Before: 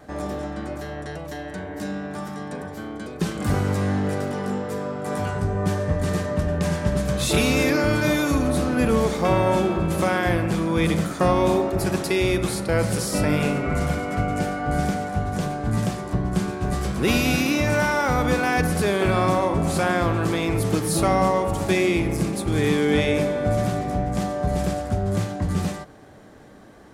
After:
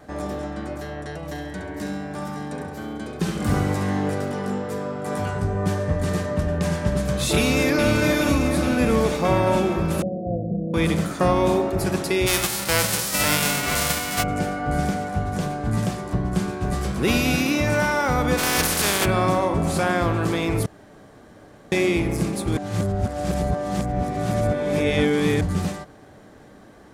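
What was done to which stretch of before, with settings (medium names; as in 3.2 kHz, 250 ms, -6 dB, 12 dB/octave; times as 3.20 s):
1.16–4.10 s: flutter echo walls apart 11.6 m, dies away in 0.59 s
7.36–7.90 s: echo throw 420 ms, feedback 70%, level -5.5 dB
10.02–10.74 s: rippled Chebyshev low-pass 720 Hz, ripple 9 dB
12.26–14.22 s: formants flattened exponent 0.3
18.37–19.04 s: spectral contrast reduction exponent 0.38
20.66–21.72 s: room tone
22.57–25.41 s: reverse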